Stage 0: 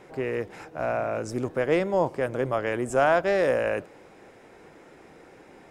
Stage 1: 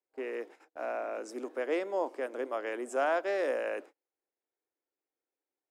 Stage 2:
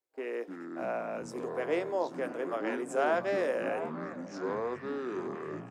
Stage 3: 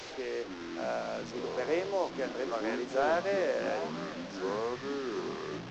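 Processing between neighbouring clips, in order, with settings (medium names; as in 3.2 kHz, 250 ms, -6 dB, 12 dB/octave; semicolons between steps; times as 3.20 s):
steep high-pass 260 Hz 48 dB/octave; gate -40 dBFS, range -37 dB; trim -8 dB
doubling 17 ms -12.5 dB; ever faster or slower copies 232 ms, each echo -6 st, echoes 3, each echo -6 dB; repeats whose band climbs or falls 694 ms, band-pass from 910 Hz, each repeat 0.7 oct, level -9 dB
one-bit delta coder 32 kbps, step -37.5 dBFS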